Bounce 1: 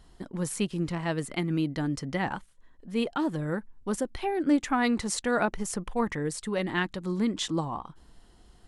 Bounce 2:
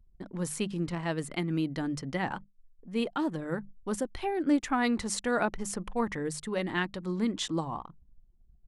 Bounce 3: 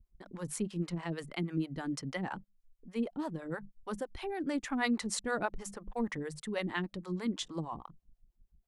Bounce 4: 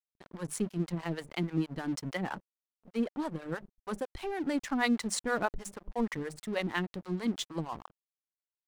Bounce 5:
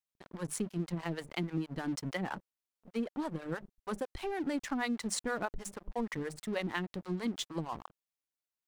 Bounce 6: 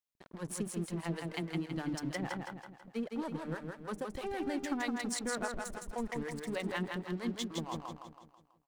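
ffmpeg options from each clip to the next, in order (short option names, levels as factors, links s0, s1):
-af "bandreject=f=50:t=h:w=6,bandreject=f=100:t=h:w=6,bandreject=f=150:t=h:w=6,bandreject=f=200:t=h:w=6,anlmdn=0.01,volume=0.794"
-filter_complex "[0:a]acrossover=split=460[s0][s1];[s0]aeval=exprs='val(0)*(1-1/2+1/2*cos(2*PI*6.3*n/s))':c=same[s2];[s1]aeval=exprs='val(0)*(1-1/2-1/2*cos(2*PI*6.3*n/s))':c=same[s3];[s2][s3]amix=inputs=2:normalize=0"
-af "aeval=exprs='sgn(val(0))*max(abs(val(0))-0.00335,0)':c=same,volume=1.5"
-af "acompressor=threshold=0.0316:ratio=6"
-af "aecho=1:1:163|326|489|652|815|978:0.631|0.297|0.139|0.0655|0.0308|0.0145,volume=0.75"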